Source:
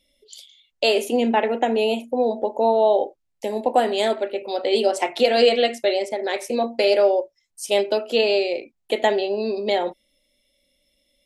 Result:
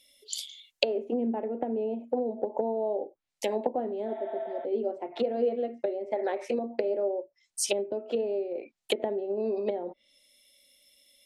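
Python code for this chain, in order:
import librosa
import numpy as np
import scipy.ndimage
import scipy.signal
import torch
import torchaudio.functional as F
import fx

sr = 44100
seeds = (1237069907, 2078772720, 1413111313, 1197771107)

y = fx.spec_repair(x, sr, seeds[0], start_s=4.1, length_s=0.53, low_hz=640.0, high_hz=3900.0, source='before')
y = fx.env_lowpass_down(y, sr, base_hz=330.0, full_db=-18.5)
y = fx.tilt_eq(y, sr, slope=3.0)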